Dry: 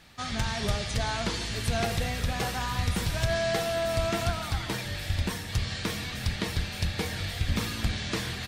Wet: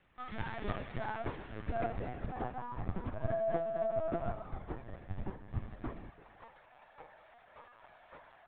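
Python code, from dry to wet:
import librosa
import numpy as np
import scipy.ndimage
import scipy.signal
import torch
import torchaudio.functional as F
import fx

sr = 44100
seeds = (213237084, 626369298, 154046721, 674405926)

y = fx.cvsd(x, sr, bps=64000)
y = fx.highpass(y, sr, hz=fx.steps((0.0, 86.0), (6.1, 610.0)), slope=24)
y = fx.filter_sweep_lowpass(y, sr, from_hz=2000.0, to_hz=920.0, start_s=0.39, end_s=2.84, q=0.96)
y = fx.echo_feedback(y, sr, ms=332, feedback_pct=18, wet_db=-15)
y = fx.lpc_vocoder(y, sr, seeds[0], excitation='pitch_kept', order=16)
y = fx.upward_expand(y, sr, threshold_db=-42.0, expansion=1.5)
y = F.gain(torch.from_numpy(y), -4.0).numpy()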